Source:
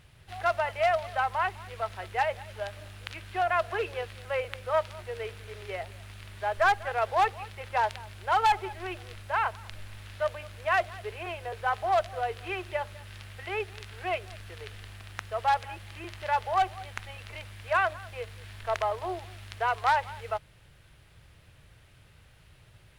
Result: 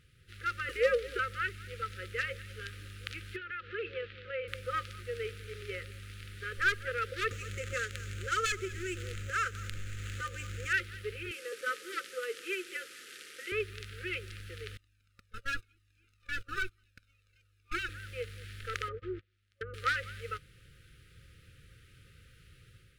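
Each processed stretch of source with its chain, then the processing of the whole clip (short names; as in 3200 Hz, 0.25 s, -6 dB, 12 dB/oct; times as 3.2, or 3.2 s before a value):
0.69–1.19 HPF 84 Hz + frequency shift -160 Hz + mismatched tape noise reduction encoder only
3.36–4.48 LPF 3700 Hz 24 dB/oct + low shelf 110 Hz -10.5 dB + compressor 5:1, threshold -31 dBFS
7.31–10.73 median filter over 9 samples + bell 6900 Hz +13 dB 0.46 oct + upward compressor, threshold -29 dBFS
11.31–13.52 delta modulation 64 kbps, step -40.5 dBFS + HPF 290 Hz 24 dB/oct
14.77–17.89 minimum comb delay 0.76 ms + gate -36 dBFS, range -21 dB + cascading flanger falling 1 Hz
18.88–19.74 gate -39 dBFS, range -30 dB + treble ducked by the level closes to 400 Hz, closed at -25.5 dBFS
whole clip: FFT band-reject 550–1200 Hz; AGC gain up to 6 dB; gain -7 dB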